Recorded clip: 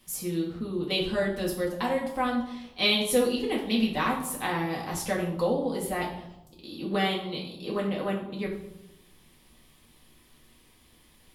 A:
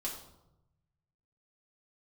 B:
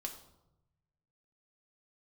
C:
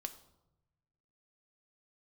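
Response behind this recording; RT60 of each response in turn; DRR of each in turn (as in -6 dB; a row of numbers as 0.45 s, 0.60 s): A; 0.90 s, 0.90 s, 0.95 s; -4.0 dB, 2.5 dB, 7.5 dB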